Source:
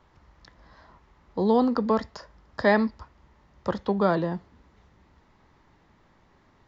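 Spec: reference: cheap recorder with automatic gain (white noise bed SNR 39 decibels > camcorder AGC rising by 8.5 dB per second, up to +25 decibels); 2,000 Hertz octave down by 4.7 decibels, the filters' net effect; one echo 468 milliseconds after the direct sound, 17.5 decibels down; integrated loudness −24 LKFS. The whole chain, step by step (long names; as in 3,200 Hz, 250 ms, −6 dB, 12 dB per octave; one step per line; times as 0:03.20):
parametric band 2,000 Hz −5.5 dB
single-tap delay 468 ms −17.5 dB
white noise bed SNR 39 dB
camcorder AGC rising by 8.5 dB per second, up to +25 dB
level +2.5 dB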